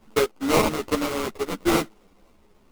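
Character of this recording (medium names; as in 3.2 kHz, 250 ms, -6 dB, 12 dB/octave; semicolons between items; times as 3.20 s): a buzz of ramps at a fixed pitch in blocks of 16 samples; phasing stages 4, 1.1 Hz, lowest notch 750–1600 Hz; aliases and images of a low sample rate 1.7 kHz, jitter 20%; a shimmering, thickened sound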